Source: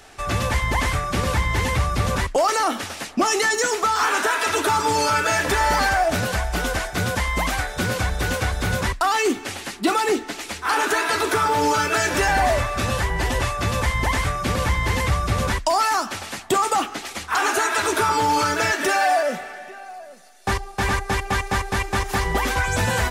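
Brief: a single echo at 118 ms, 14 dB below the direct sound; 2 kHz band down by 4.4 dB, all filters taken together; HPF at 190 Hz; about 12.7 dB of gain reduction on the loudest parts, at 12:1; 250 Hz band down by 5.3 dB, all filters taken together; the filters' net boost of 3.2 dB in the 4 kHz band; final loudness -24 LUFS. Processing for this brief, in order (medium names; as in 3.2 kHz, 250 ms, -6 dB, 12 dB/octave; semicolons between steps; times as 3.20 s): high-pass 190 Hz; peaking EQ 250 Hz -5.5 dB; peaking EQ 2 kHz -7 dB; peaking EQ 4 kHz +6 dB; compression 12:1, threshold -30 dBFS; delay 118 ms -14 dB; trim +9 dB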